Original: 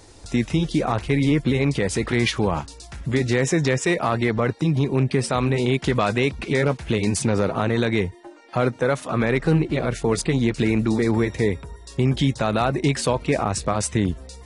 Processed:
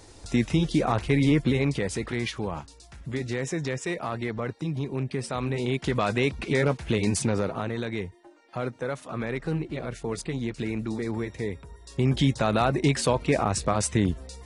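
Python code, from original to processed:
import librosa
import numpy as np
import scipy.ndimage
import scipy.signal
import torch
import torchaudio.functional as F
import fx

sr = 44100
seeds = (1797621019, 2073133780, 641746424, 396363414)

y = fx.gain(x, sr, db=fx.line((1.4, -2.0), (2.28, -9.5), (5.14, -9.5), (6.32, -3.0), (7.18, -3.0), (7.77, -10.0), (11.48, -10.0), (12.18, -2.0)))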